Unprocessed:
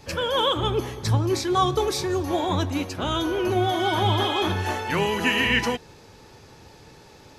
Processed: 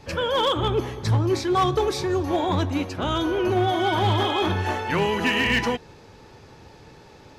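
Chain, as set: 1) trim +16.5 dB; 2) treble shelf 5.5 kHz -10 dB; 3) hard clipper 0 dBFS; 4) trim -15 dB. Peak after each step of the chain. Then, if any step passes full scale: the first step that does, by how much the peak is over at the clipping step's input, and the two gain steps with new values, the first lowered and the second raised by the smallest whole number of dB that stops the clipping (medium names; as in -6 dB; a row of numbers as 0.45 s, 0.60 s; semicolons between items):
+8.0 dBFS, +7.0 dBFS, 0.0 dBFS, -15.0 dBFS; step 1, 7.0 dB; step 1 +9.5 dB, step 4 -8 dB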